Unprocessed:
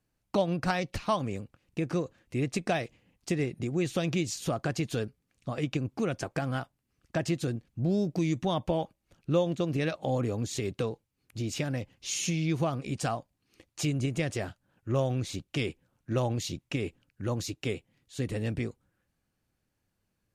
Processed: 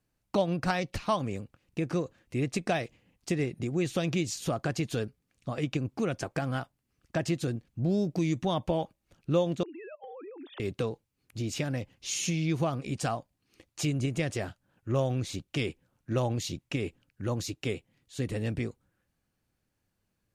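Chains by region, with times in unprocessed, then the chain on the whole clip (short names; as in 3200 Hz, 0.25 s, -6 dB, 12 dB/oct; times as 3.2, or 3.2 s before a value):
9.63–10.6 sine-wave speech + steep high-pass 290 Hz + compressor 16:1, threshold -41 dBFS
whole clip: dry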